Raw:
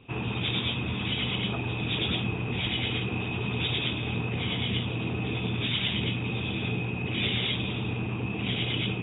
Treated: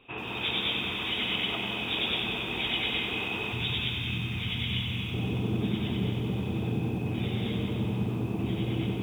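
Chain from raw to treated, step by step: peaking EQ 110 Hz -14 dB 2.5 oct, from 3.53 s 560 Hz, from 5.14 s 3 kHz; reverberation RT60 0.95 s, pre-delay 175 ms, DRR 4.5 dB; bit-crushed delay 94 ms, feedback 80%, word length 9-bit, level -8 dB

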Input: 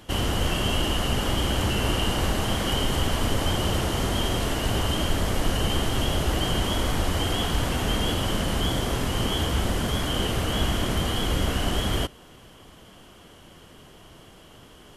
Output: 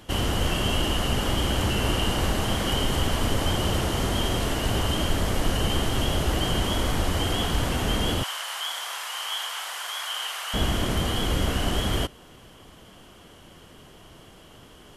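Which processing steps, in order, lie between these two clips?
8.23–10.54 s: high-pass 890 Hz 24 dB/octave

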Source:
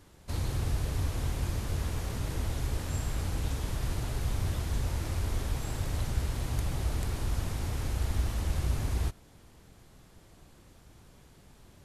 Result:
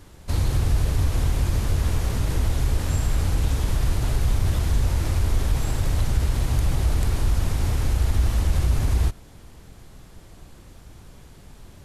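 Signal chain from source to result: bass shelf 66 Hz +7 dB; in parallel at +3 dB: peak limiter -21.5 dBFS, peak gain reduction 8.5 dB

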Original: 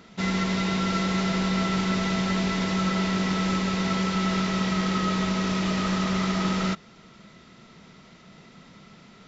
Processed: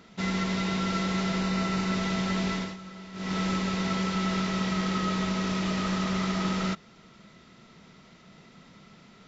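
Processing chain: 1.41–1.92 s: band-stop 3.3 kHz, Q 11; 2.53–3.37 s: dip -15.5 dB, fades 0.24 s; trim -3 dB

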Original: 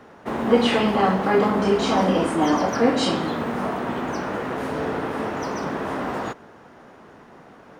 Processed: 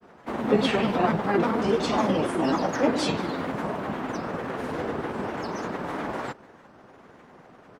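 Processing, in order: harmony voices -7 st -15 dB; granulator, spray 11 ms, pitch spread up and down by 3 st; trim -3 dB

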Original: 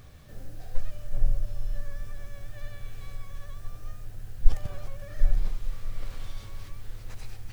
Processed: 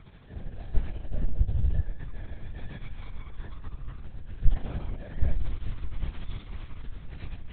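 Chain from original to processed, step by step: dynamic bell 1.1 kHz, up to -3 dB, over -55 dBFS, Q 0.84; LPC vocoder at 8 kHz whisper; 1.39–1.81 s: peaking EQ 78 Hz +14.5 dB 1.9 oct; trim -1.5 dB

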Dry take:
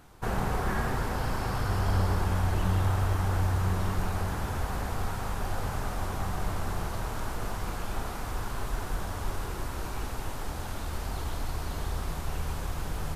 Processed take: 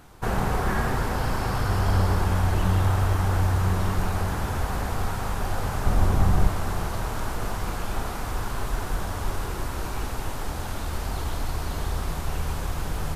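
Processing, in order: 5.86–6.47 s: bass shelf 400 Hz +9 dB; trim +4.5 dB

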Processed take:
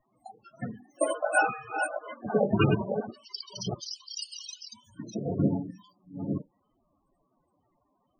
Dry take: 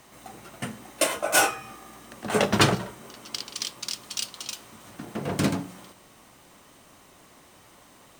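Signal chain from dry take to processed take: chunks repeated in reverse 535 ms, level -6 dB; spectral noise reduction 15 dB; loudest bins only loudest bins 16

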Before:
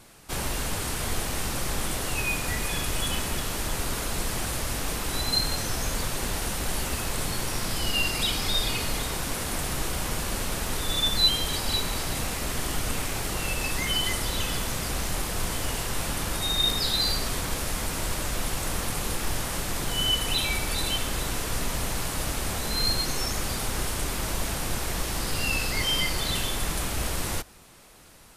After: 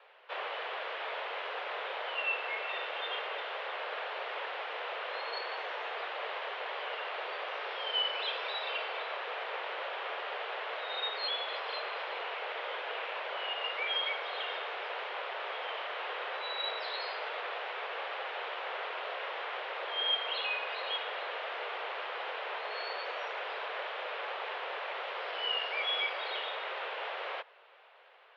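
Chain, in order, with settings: mistuned SSB +210 Hz 260–3100 Hz; trim -3 dB

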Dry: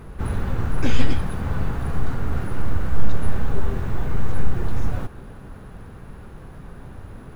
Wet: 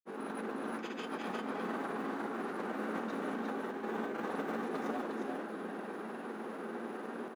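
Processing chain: Chebyshev high-pass 220 Hz, order 5; treble shelf 2.8 kHz -9 dB; compressor with a negative ratio -40 dBFS, ratio -1; granulator, pitch spread up and down by 0 st; delay 355 ms -3.5 dB; on a send at -10 dB: reverberation, pre-delay 3 ms; on the sum: trim +1 dB

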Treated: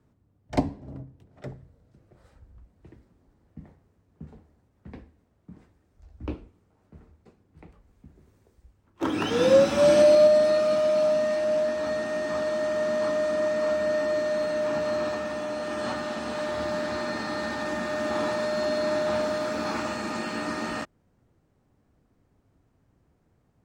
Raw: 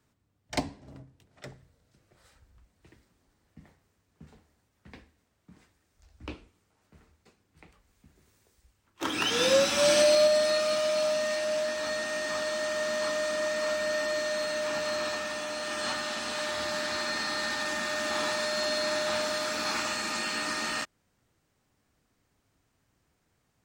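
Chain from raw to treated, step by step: tilt shelf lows +9 dB, about 1.3 kHz

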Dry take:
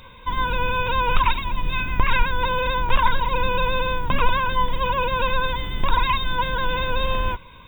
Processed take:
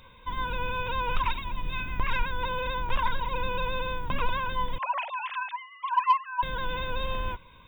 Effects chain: 4.78–6.43 s: formants replaced by sine waves; saturation -4 dBFS, distortion -24 dB; trim -8 dB

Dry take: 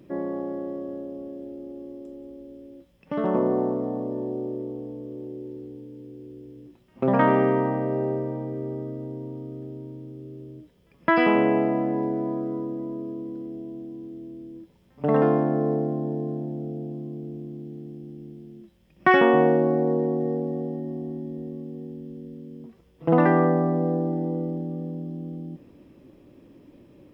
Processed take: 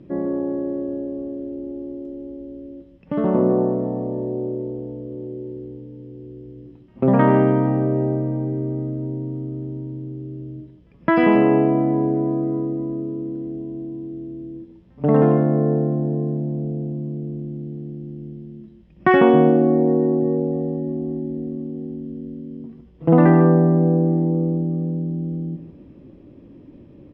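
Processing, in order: low-pass 4.3 kHz 12 dB/octave; bass shelf 410 Hz +10.5 dB; on a send: delay 151 ms -10.5 dB; on the sum: trim -1 dB

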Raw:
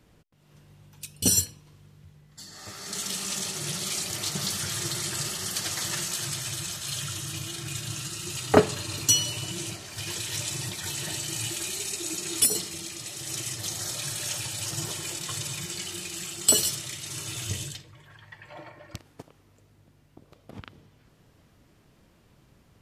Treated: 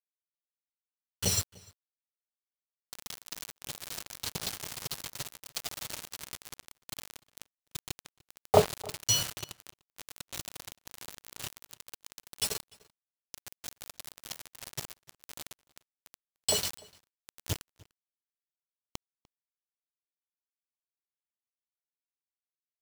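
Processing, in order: low-pass 4.8 kHz 12 dB/octave; static phaser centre 680 Hz, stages 4; bit crusher 5-bit; echo from a far wall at 51 m, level -23 dB

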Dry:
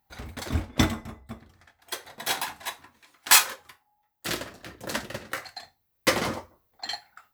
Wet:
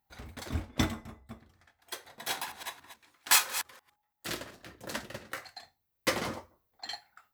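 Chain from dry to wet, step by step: 2.30–4.55 s: chunks repeated in reverse 166 ms, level -11.5 dB; trim -6.5 dB

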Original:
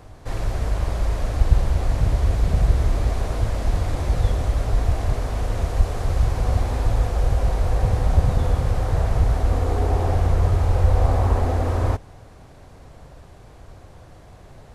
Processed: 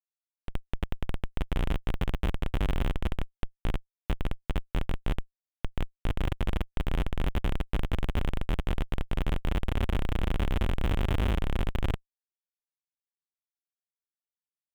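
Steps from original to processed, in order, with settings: self-modulated delay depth 0.066 ms; Schmitt trigger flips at -14 dBFS; resonant high shelf 3.9 kHz -6.5 dB, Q 3; trim -5 dB

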